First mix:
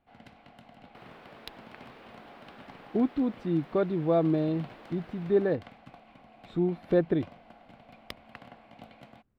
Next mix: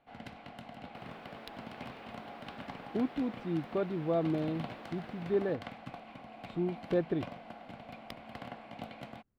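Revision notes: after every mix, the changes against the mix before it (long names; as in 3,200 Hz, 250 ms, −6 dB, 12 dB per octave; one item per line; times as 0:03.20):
speech −6.0 dB
first sound +5.5 dB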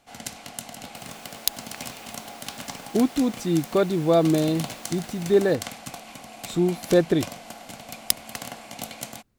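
speech +10.5 dB
first sound +4.5 dB
master: remove high-frequency loss of the air 430 metres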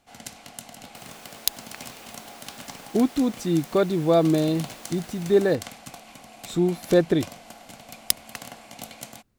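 first sound −4.0 dB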